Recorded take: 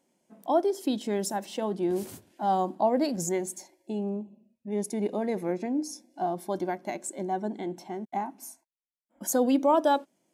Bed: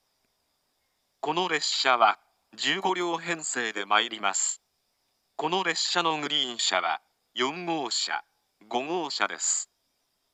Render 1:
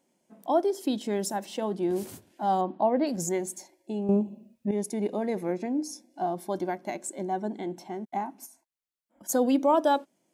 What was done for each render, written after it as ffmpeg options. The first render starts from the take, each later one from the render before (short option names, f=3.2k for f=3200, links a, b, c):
-filter_complex "[0:a]asettb=1/sr,asplit=3[a][b][c];[a]atrim=end=2.614[d];[b]atrim=start=2.61:end=3.07,asetpts=PTS-STARTPTS,afade=t=in:d=0.004:c=qsin,afade=t=out:st=0.456:d=0.004:c=qsin,lowpass=f=3.7k:w=0.5412,lowpass=f=3.7k:w=1.3066[e];[c]atrim=start=3.066[f];[d][e]acrossfade=d=0.004:c1=hsin:c2=qsin[g];[g][f]acrossfade=d=0.004:c1=qsin:c2=hsin,asplit=3[h][i][j];[h]afade=t=out:st=8.45:d=0.02[k];[i]acompressor=threshold=-48dB:ratio=6:attack=3.2:release=140:knee=1:detection=peak,afade=t=in:st=8.45:d=0.02,afade=t=out:st=9.28:d=0.02[l];[j]afade=t=in:st=9.28:d=0.02[m];[k][l][m]amix=inputs=3:normalize=0,asplit=3[n][o][p];[n]atrim=end=4.092[q];[o]atrim=start=4.088:end=4.712,asetpts=PTS-STARTPTS,volume=10dB[r];[p]atrim=start=4.708[s];[q][r]acrossfade=d=0.004:c1=hsin:c2=hsin[t];[t][s]acrossfade=d=0.004:c1=hsin:c2=hsin"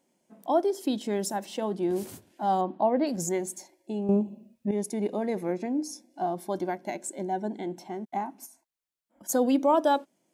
-filter_complex "[0:a]asettb=1/sr,asplit=3[a][b][c];[a]atrim=end=6.774[d];[b]atrim=start=6.77:end=7.82,asetpts=PTS-STARTPTS,afade=t=in:d=0.004:c=qsin,afade=t=out:st=1.046:d=0.004:c=qsin,asuperstop=centerf=1200:order=12:qfactor=4.5[e];[c]atrim=start=7.816[f];[d][e]acrossfade=d=0.004:c1=hsin:c2=qsin[g];[g][f]acrossfade=d=0.004:c1=qsin:c2=hsin"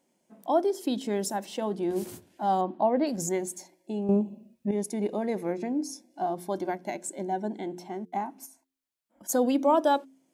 -af "bandreject=f=88.9:t=h:w=4,bandreject=f=177.8:t=h:w=4,bandreject=f=266.7:t=h:w=4,bandreject=f=355.6:t=h:w=4,bandreject=f=444.5:t=h:w=4"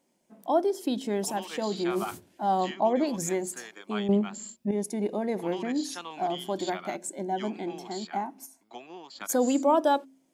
-filter_complex "[1:a]volume=-15dB[a];[0:a][a]amix=inputs=2:normalize=0"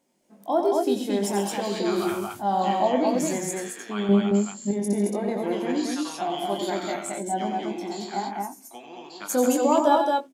-filter_complex "[0:a]asplit=2[a][b];[b]adelay=20,volume=-6.5dB[c];[a][c]amix=inputs=2:normalize=0,aecho=1:1:90.38|134.1|221.6:0.447|0.316|0.794"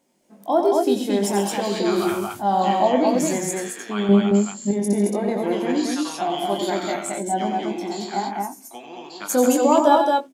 -af "volume=4dB"